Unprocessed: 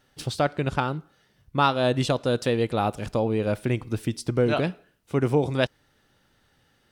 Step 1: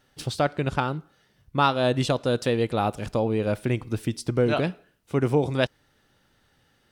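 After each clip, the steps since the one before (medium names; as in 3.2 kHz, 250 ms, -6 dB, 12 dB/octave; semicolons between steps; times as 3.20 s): no audible change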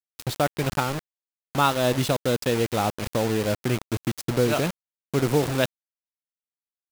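bit crusher 5-bit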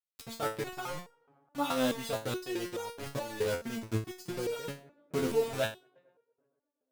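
tape echo 116 ms, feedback 73%, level -22.5 dB, low-pass 2.4 kHz; vibrato 2.9 Hz 11 cents; resonator arpeggio 4.7 Hz 86–470 Hz; trim +2 dB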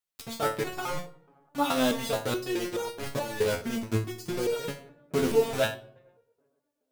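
reverberation RT60 0.60 s, pre-delay 5 ms, DRR 10.5 dB; trim +5 dB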